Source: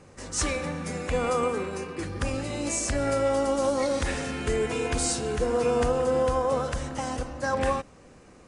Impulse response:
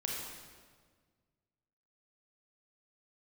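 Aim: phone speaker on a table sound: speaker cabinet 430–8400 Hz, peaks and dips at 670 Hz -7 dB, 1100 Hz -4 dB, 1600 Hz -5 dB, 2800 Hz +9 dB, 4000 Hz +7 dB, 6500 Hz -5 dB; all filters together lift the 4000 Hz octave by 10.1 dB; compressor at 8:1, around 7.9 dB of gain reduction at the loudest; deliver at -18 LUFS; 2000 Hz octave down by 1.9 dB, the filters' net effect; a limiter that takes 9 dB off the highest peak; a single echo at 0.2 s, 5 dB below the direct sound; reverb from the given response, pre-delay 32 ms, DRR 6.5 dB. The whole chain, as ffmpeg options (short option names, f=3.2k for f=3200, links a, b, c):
-filter_complex "[0:a]equalizer=f=2k:t=o:g=-7.5,equalizer=f=4k:t=o:g=8.5,acompressor=threshold=-29dB:ratio=8,alimiter=level_in=1.5dB:limit=-24dB:level=0:latency=1,volume=-1.5dB,aecho=1:1:200:0.562,asplit=2[a][b];[1:a]atrim=start_sample=2205,adelay=32[c];[b][c]afir=irnorm=-1:irlink=0,volume=-9.5dB[d];[a][d]amix=inputs=2:normalize=0,highpass=f=430:w=0.5412,highpass=f=430:w=1.3066,equalizer=f=670:t=q:w=4:g=-7,equalizer=f=1.1k:t=q:w=4:g=-4,equalizer=f=1.6k:t=q:w=4:g=-5,equalizer=f=2.8k:t=q:w=4:g=9,equalizer=f=4k:t=q:w=4:g=7,equalizer=f=6.5k:t=q:w=4:g=-5,lowpass=f=8.4k:w=0.5412,lowpass=f=8.4k:w=1.3066,volume=16.5dB"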